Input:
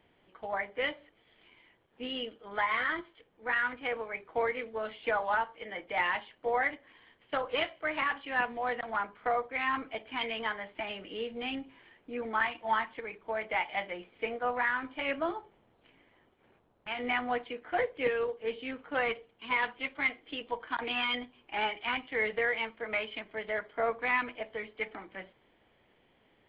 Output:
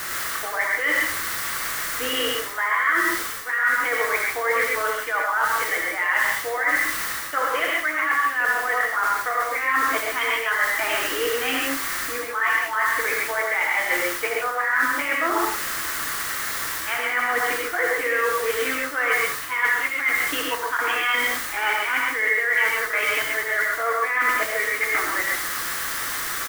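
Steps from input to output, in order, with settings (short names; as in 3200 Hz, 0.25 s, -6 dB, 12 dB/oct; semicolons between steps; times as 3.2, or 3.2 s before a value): brick-wall FIR high-pass 260 Hz; echo 81 ms -16 dB; in parallel at -5 dB: requantised 6-bit, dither triangular; on the sum: band shelf 1500 Hz +11.5 dB 1.1 oct; reverse; compressor 8:1, threshold -30 dBFS, peak gain reduction 19.5 dB; reverse; non-linear reverb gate 0.16 s rising, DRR -0.5 dB; gain +8 dB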